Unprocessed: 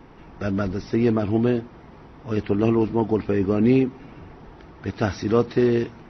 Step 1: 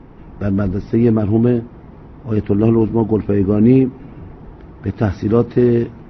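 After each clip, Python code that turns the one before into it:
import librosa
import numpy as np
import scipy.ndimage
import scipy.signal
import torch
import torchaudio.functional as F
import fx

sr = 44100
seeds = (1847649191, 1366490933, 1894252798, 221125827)

y = fx.lowpass(x, sr, hz=2400.0, slope=6)
y = fx.low_shelf(y, sr, hz=390.0, db=8.5)
y = y * 10.0 ** (1.0 / 20.0)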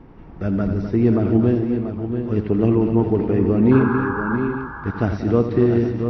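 y = fx.spec_paint(x, sr, seeds[0], shape='noise', start_s=3.71, length_s=0.66, low_hz=790.0, high_hz=1700.0, level_db=-24.0)
y = fx.echo_multitap(y, sr, ms=(85, 186, 255, 653, 686, 813), db=(-10.5, -12.5, -9.5, -17.0, -8.5, -14.5))
y = y * 10.0 ** (-4.0 / 20.0)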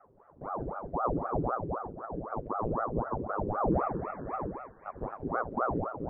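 y = fx.ladder_bandpass(x, sr, hz=300.0, resonance_pct=20)
y = fx.ring_lfo(y, sr, carrier_hz=540.0, swing_pct=90, hz=3.9)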